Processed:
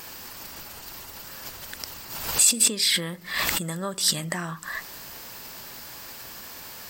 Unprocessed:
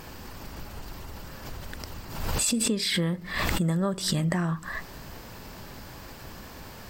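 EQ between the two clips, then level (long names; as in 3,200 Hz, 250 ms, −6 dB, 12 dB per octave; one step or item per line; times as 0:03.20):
spectral tilt +3 dB per octave
0.0 dB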